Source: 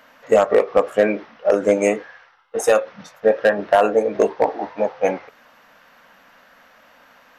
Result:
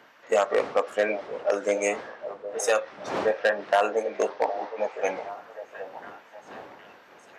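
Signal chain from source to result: wind noise 550 Hz -33 dBFS; weighting filter A; delay with a stepping band-pass 0.766 s, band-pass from 560 Hz, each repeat 0.7 oct, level -11 dB; dynamic EQ 5900 Hz, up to +5 dB, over -44 dBFS, Q 0.82; gain -5.5 dB

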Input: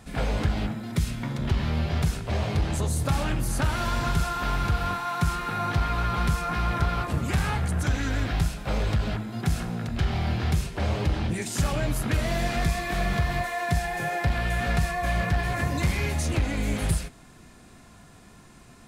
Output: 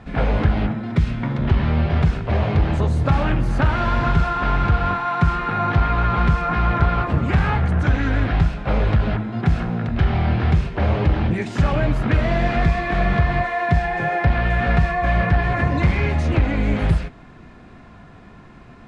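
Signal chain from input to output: LPF 2400 Hz 12 dB/oct; gain +7.5 dB

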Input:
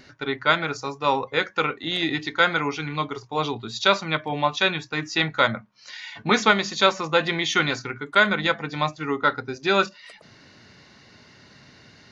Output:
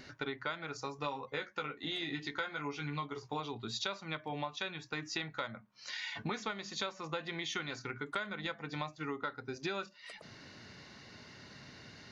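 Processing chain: 0.97–3.4 doubler 14 ms -3.5 dB; compressor 10:1, threshold -33 dBFS, peak gain reduction 21.5 dB; gain -2.5 dB

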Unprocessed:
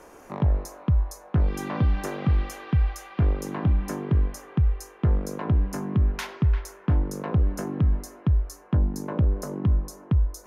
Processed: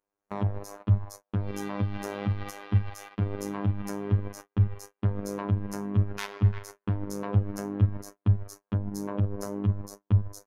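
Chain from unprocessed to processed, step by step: level quantiser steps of 9 dB; robotiser 101 Hz; gate -47 dBFS, range -37 dB; gain +4 dB

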